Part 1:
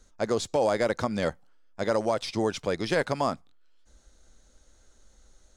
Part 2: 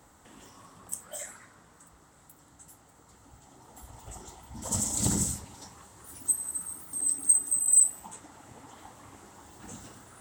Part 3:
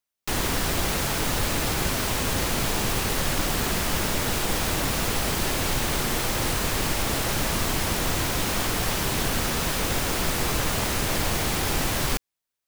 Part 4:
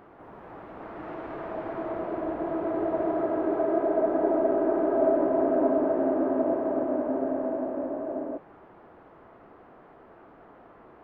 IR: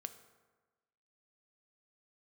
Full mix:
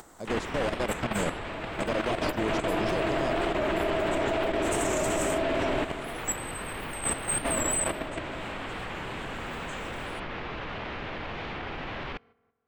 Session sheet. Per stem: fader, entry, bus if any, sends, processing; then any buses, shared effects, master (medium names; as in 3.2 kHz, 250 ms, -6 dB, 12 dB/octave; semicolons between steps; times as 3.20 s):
-4.5 dB, 0.00 s, no bus, no send, no echo send, bass shelf 430 Hz +9 dB; peaking EQ 1.3 kHz -11 dB 1.6 oct
-2.5 dB, 0.00 s, bus A, send -11.5 dB, no echo send, upward compressor, threshold -35 dBFS
-0.5 dB, 0.00 s, no bus, send -10.5 dB, no echo send, low-pass 3 kHz 24 dB/octave; peak limiter -19 dBFS, peak gain reduction 5.5 dB
+0.5 dB, 0.00 s, muted 5.84–7.43 s, bus A, no send, echo send -8.5 dB, none
bus A: 0.0 dB, peak limiter -19 dBFS, peak gain reduction 8 dB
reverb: on, RT60 1.3 s, pre-delay 3 ms
echo: delay 337 ms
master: bass shelf 220 Hz -7 dB; level held to a coarse grid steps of 9 dB; warped record 45 rpm, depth 100 cents